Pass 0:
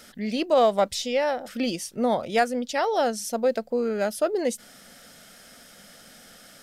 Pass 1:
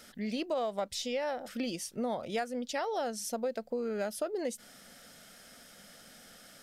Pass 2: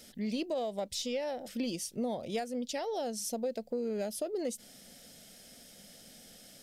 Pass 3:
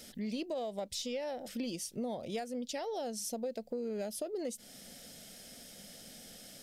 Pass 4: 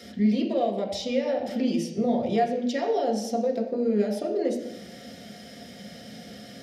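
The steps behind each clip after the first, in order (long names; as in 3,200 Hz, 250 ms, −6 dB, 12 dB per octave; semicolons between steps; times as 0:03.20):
downward compressor 4 to 1, threshold −26 dBFS, peak gain reduction 9.5 dB; level −5 dB
parametric band 1,300 Hz −14 dB 1.1 octaves; in parallel at −12 dB: soft clipping −33 dBFS, distortion −15 dB
downward compressor 1.5 to 1, threshold −47 dBFS, peak gain reduction 6.5 dB; level +2.5 dB
convolution reverb RT60 0.85 s, pre-delay 3 ms, DRR −1 dB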